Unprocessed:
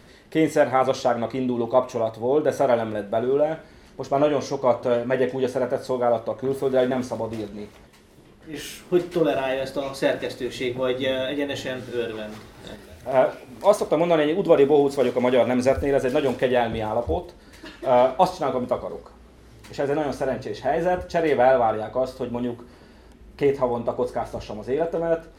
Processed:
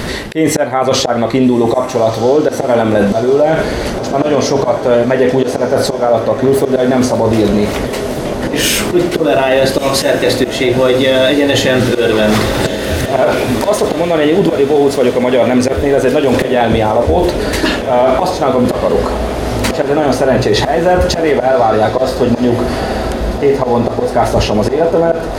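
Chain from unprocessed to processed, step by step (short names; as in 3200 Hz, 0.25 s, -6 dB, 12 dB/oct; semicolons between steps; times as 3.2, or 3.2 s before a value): auto swell 0.325 s; reverse; compressor 10:1, threshold -34 dBFS, peak gain reduction 19.5 dB; reverse; diffused feedback echo 1.272 s, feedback 69%, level -13.5 dB; maximiser +30.5 dB; gain -1 dB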